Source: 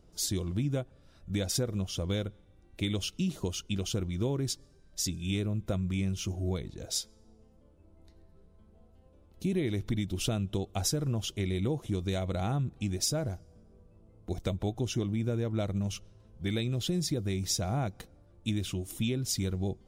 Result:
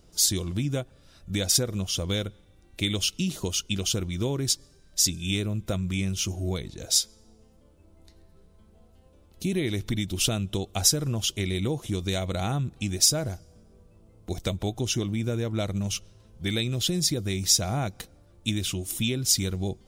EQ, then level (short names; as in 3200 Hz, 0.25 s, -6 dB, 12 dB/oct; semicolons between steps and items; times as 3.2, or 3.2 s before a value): high shelf 2000 Hz +9 dB; +2.5 dB